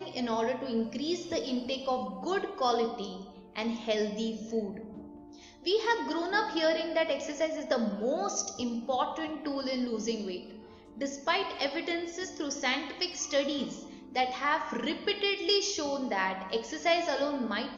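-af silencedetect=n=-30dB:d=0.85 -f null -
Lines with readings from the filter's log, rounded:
silence_start: 4.69
silence_end: 5.66 | silence_duration: 0.98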